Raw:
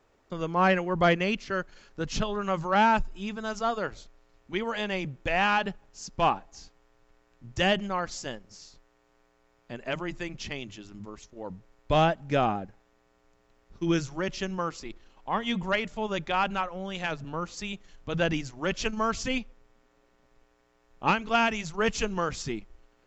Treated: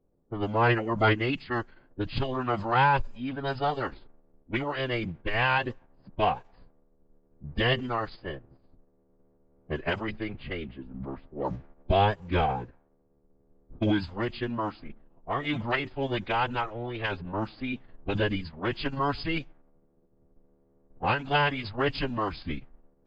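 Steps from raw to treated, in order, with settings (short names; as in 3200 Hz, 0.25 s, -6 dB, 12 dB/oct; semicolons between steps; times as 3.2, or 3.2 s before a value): recorder AGC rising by 5.3 dB/s; low-pass opened by the level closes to 340 Hz, open at -24.5 dBFS; formant-preserving pitch shift -8 st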